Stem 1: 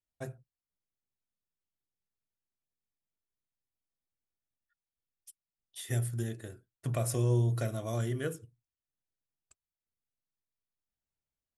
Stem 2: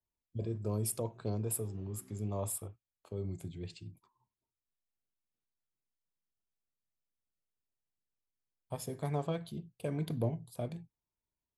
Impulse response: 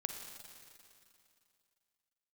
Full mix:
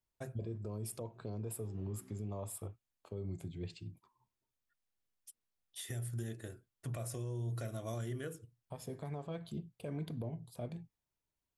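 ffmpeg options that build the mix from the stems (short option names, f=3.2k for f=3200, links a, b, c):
-filter_complex "[0:a]volume=-2dB[a];[1:a]highshelf=f=5.3k:g=-6.5,volume=1dB[b];[a][b]amix=inputs=2:normalize=0,alimiter=level_in=8dB:limit=-24dB:level=0:latency=1:release=225,volume=-8dB"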